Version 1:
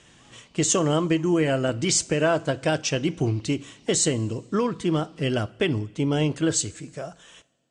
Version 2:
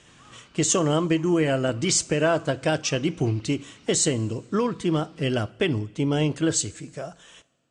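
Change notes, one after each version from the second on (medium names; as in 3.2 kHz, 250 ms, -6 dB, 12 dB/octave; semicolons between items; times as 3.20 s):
background: remove static phaser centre 390 Hz, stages 6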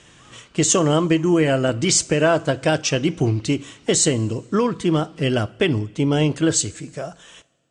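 speech +4.5 dB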